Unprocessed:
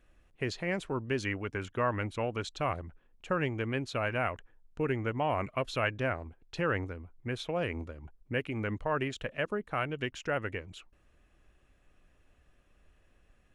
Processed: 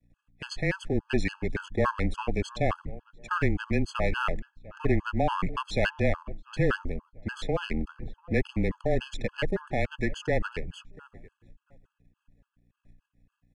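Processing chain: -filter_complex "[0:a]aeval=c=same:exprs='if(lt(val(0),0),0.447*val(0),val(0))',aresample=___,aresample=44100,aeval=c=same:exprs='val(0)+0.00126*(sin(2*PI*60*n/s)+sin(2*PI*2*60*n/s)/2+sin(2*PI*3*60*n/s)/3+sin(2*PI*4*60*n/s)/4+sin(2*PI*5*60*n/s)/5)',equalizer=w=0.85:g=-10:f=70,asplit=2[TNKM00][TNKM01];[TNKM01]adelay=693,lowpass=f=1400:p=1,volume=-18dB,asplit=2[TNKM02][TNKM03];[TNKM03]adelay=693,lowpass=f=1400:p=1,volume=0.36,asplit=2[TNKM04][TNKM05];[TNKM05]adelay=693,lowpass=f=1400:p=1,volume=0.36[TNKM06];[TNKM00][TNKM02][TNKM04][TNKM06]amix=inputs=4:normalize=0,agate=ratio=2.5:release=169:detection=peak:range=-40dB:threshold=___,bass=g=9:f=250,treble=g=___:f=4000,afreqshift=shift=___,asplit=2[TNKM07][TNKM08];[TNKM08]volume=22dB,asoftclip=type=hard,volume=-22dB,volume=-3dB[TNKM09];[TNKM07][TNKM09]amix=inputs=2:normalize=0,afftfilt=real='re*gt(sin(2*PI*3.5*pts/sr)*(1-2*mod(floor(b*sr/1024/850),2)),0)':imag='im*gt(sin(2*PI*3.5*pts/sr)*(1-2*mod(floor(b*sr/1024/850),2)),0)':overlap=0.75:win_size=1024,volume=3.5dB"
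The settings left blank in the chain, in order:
22050, -51dB, -1, -21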